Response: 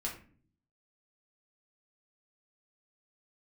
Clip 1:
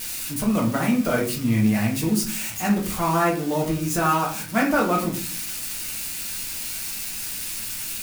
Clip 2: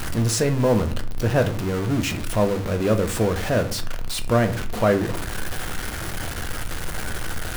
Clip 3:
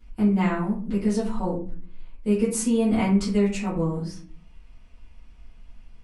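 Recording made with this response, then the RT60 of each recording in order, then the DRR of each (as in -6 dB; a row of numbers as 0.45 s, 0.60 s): 1; no single decay rate, no single decay rate, no single decay rate; -3.0 dB, 6.5 dB, -11.5 dB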